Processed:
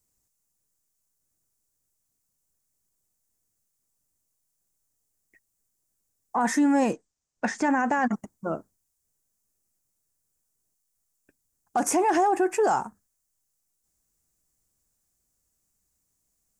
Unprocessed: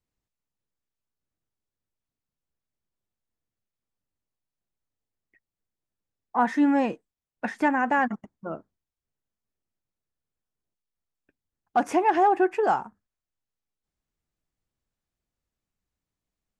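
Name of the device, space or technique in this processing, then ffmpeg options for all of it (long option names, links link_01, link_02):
over-bright horn tweeter: -filter_complex "[0:a]highshelf=frequency=5000:width_type=q:width=1.5:gain=13,alimiter=limit=-20dB:level=0:latency=1:release=20,asettb=1/sr,asplit=3[link_01][link_02][link_03];[link_01]atrim=end=6.934[link_04];[link_02]atrim=start=6.93:end=8.11,asetpts=PTS-STARTPTS,afade=type=in:duration=0.004:curve=qsin,afade=type=out:start_time=1.176:duration=0.004:curve=qsin,lowpass=frequency=6800:width=0.5412,lowpass=frequency=6800:width=1.3066[link_05];[link_03]atrim=start=8.106[link_06];[link_04][link_05]acrossfade=duration=0.004:curve1=hsin:curve2=qsin[link_07];[link_07][link_06]acrossfade=duration=0.004:curve1=qsin:curve2=hsin,volume=4.5dB"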